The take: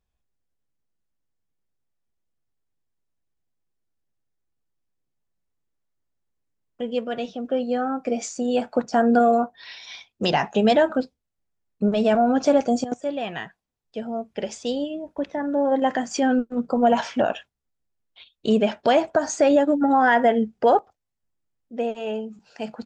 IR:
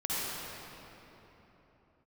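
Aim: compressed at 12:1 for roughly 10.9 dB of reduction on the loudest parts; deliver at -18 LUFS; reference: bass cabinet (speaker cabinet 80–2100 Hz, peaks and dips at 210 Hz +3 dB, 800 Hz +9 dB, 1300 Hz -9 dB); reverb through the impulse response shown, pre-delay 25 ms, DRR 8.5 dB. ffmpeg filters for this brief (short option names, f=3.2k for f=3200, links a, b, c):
-filter_complex "[0:a]acompressor=threshold=-24dB:ratio=12,asplit=2[a][b];[1:a]atrim=start_sample=2205,adelay=25[c];[b][c]afir=irnorm=-1:irlink=0,volume=-16.5dB[d];[a][d]amix=inputs=2:normalize=0,highpass=f=80:w=0.5412,highpass=f=80:w=1.3066,equalizer=f=210:t=q:w=4:g=3,equalizer=f=800:t=q:w=4:g=9,equalizer=f=1.3k:t=q:w=4:g=-9,lowpass=f=2.1k:w=0.5412,lowpass=f=2.1k:w=1.3066,volume=9.5dB"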